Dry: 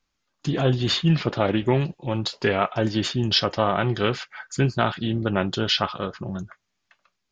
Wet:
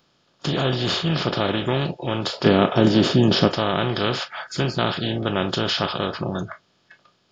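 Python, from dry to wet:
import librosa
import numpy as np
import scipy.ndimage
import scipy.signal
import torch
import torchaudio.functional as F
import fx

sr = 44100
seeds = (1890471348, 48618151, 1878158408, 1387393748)

y = fx.bin_compress(x, sr, power=0.4)
y = fx.noise_reduce_blind(y, sr, reduce_db=20)
y = fx.peak_eq(y, sr, hz=230.0, db=11.0, octaves=2.5, at=(2.45, 3.48))
y = y * 10.0 ** (-5.5 / 20.0)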